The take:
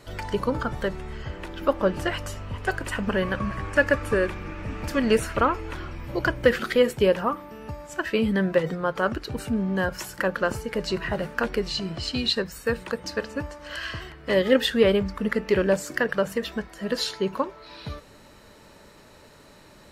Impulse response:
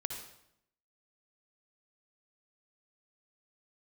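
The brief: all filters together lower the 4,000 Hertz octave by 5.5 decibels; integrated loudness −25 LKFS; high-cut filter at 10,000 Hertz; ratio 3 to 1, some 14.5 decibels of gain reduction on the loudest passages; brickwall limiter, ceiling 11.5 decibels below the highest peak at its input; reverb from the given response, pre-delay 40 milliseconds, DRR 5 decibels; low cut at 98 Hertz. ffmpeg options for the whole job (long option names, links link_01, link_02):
-filter_complex "[0:a]highpass=98,lowpass=10000,equalizer=frequency=4000:width_type=o:gain=-7,acompressor=threshold=-34dB:ratio=3,alimiter=level_in=4.5dB:limit=-24dB:level=0:latency=1,volume=-4.5dB,asplit=2[link_01][link_02];[1:a]atrim=start_sample=2205,adelay=40[link_03];[link_02][link_03]afir=irnorm=-1:irlink=0,volume=-5.5dB[link_04];[link_01][link_04]amix=inputs=2:normalize=0,volume=13dB"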